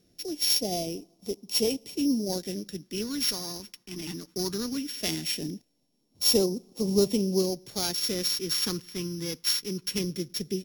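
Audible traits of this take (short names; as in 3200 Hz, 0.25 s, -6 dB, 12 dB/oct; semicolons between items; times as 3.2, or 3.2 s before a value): a buzz of ramps at a fixed pitch in blocks of 8 samples; phasing stages 2, 0.19 Hz, lowest notch 620–1500 Hz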